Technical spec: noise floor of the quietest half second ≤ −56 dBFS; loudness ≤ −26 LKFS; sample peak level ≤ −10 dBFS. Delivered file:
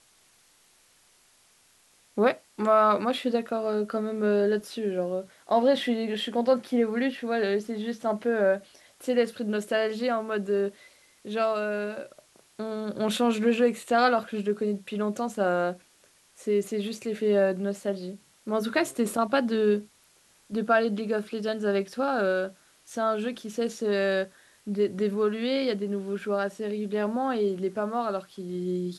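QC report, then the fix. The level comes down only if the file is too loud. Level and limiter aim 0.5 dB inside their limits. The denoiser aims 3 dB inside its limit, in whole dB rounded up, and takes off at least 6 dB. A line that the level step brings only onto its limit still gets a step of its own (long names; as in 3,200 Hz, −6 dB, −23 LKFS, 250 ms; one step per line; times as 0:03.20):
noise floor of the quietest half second −62 dBFS: in spec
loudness −27.5 LKFS: in spec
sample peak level −9.5 dBFS: out of spec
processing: brickwall limiter −10.5 dBFS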